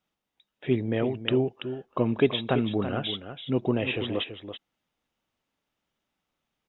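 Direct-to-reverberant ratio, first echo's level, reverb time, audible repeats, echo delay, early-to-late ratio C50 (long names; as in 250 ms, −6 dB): no reverb audible, −10.0 dB, no reverb audible, 1, 332 ms, no reverb audible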